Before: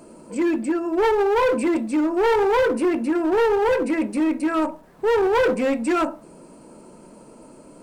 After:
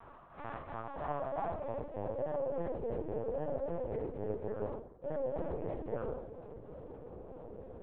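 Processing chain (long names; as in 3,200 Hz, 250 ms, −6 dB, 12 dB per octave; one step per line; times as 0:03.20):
sub-harmonics by changed cycles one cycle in 3, inverted
high-pass filter 47 Hz 24 dB per octave
reversed playback
downward compressor 4 to 1, threshold −37 dBFS, peak gain reduction 17 dB
reversed playback
band-pass filter sweep 1,100 Hz → 450 Hz, 0:00.50–0:02.59
tuned comb filter 69 Hz, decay 1.3 s, harmonics all, mix 40%
rectangular room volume 410 cubic metres, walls furnished, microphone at 2.4 metres
linear-prediction vocoder at 8 kHz pitch kept
highs frequency-modulated by the lows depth 0.2 ms
level +3 dB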